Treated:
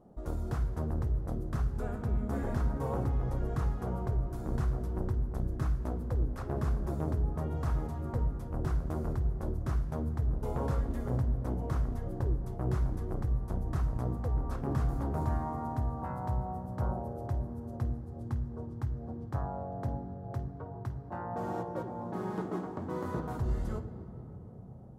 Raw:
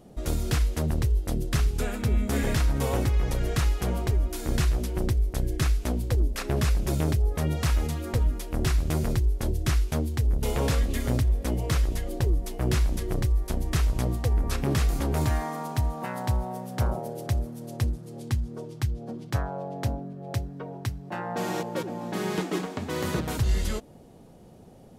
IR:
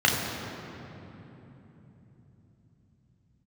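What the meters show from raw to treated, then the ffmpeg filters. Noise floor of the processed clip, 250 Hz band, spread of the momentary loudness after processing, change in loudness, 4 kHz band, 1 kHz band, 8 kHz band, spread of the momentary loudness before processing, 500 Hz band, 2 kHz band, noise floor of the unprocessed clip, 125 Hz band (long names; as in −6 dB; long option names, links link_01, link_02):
−44 dBFS, −6.0 dB, 6 LU, −6.5 dB, below −20 dB, −4.5 dB, below −20 dB, 7 LU, −6.5 dB, −14.0 dB, −49 dBFS, −6.0 dB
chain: -filter_complex "[0:a]highshelf=frequency=1700:width_type=q:width=1.5:gain=-13.5,asplit=2[link_01][link_02];[1:a]atrim=start_sample=2205,adelay=19[link_03];[link_02][link_03]afir=irnorm=-1:irlink=0,volume=-24.5dB[link_04];[link_01][link_04]amix=inputs=2:normalize=0,volume=-8dB"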